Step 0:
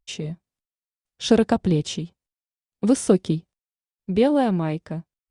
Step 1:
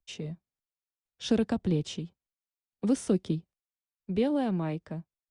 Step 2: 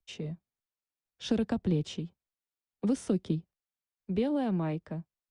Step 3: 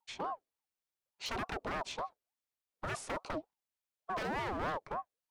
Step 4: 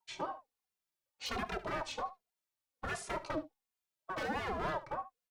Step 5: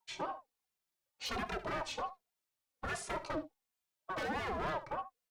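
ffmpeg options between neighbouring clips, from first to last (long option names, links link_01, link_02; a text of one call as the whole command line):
ffmpeg -i in.wav -filter_complex "[0:a]highshelf=frequency=6100:gain=-6.5,acrossover=split=170|390|1900[link_01][link_02][link_03][link_04];[link_03]alimiter=limit=-20.5dB:level=0:latency=1:release=131[link_05];[link_01][link_02][link_05][link_04]amix=inputs=4:normalize=0,volume=-7dB" out.wav
ffmpeg -i in.wav -filter_complex "[0:a]highshelf=frequency=4500:gain=-6.5,acrossover=split=180|3000[link_01][link_02][link_03];[link_02]acompressor=threshold=-26dB:ratio=6[link_04];[link_01][link_04][link_03]amix=inputs=3:normalize=0" out.wav
ffmpeg -i in.wav -af "aeval=exprs='0.0282*(abs(mod(val(0)/0.0282+3,4)-2)-1)':channel_layout=same,aeval=exprs='val(0)*sin(2*PI*700*n/s+700*0.35/3.4*sin(2*PI*3.4*n/s))':channel_layout=same,volume=2dB" out.wav
ffmpeg -i in.wav -filter_complex "[0:a]aecho=1:1:27|72:0.15|0.158,asplit=2[link_01][link_02];[link_02]adelay=2.5,afreqshift=-1.3[link_03];[link_01][link_03]amix=inputs=2:normalize=1,volume=3dB" out.wav
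ffmpeg -i in.wav -af "asoftclip=type=tanh:threshold=-31.5dB,volume=1.5dB" out.wav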